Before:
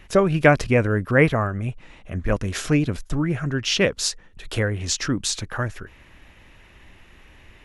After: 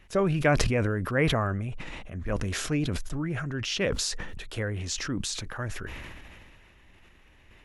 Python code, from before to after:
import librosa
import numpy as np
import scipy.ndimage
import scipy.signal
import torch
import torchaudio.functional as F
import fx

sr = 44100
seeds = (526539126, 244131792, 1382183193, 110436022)

y = fx.sustainer(x, sr, db_per_s=24.0)
y = F.gain(torch.from_numpy(y), -9.0).numpy()